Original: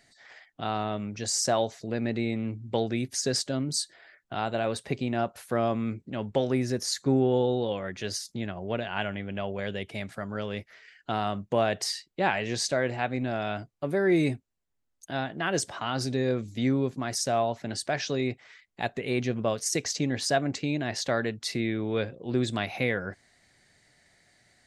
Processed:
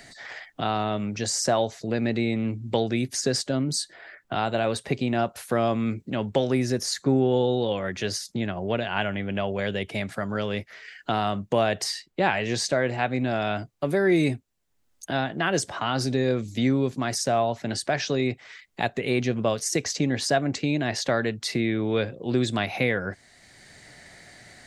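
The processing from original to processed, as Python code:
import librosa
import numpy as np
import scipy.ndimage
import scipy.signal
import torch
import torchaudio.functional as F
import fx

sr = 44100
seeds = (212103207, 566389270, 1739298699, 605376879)

y = fx.band_squash(x, sr, depth_pct=40)
y = F.gain(torch.from_numpy(y), 3.5).numpy()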